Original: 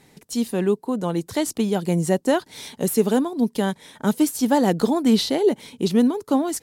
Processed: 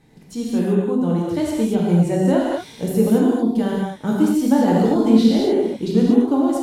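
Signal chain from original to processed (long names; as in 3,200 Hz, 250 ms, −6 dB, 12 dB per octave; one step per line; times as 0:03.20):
spectral tilt −2 dB per octave
reverb whose tail is shaped and stops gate 260 ms flat, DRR −4.5 dB
level −5.5 dB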